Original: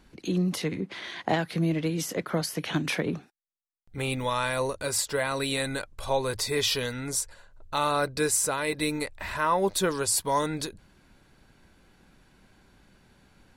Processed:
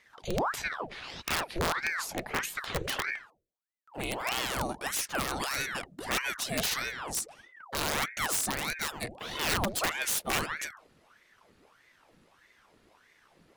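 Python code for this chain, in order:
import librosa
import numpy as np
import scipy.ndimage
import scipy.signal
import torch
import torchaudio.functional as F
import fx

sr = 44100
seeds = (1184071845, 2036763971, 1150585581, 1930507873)

y = fx.hum_notches(x, sr, base_hz=50, count=9)
y = (np.mod(10.0 ** (18.5 / 20.0) * y + 1.0, 2.0) - 1.0) / 10.0 ** (18.5 / 20.0)
y = fx.ring_lfo(y, sr, carrier_hz=1100.0, swing_pct=85, hz=1.6)
y = F.gain(torch.from_numpy(y), -1.0).numpy()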